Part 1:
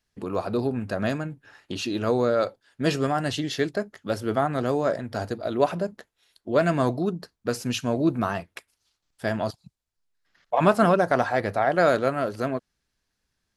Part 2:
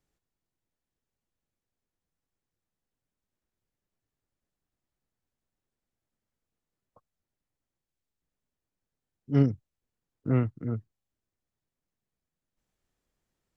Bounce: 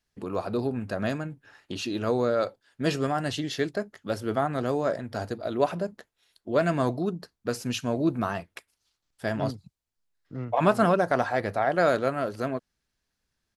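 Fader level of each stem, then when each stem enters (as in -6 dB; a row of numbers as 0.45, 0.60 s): -2.5, -10.5 dB; 0.00, 0.05 s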